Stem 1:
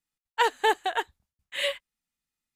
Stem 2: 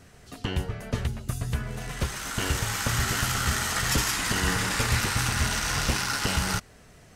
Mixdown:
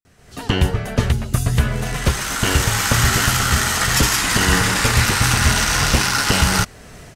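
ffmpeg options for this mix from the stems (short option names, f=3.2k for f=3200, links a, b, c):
-filter_complex "[0:a]alimiter=limit=-20.5dB:level=0:latency=1,volume=-8.5dB[a];[1:a]dynaudnorm=f=110:g=5:m=16dB,adelay=50,volume=-1.5dB[b];[a][b]amix=inputs=2:normalize=0"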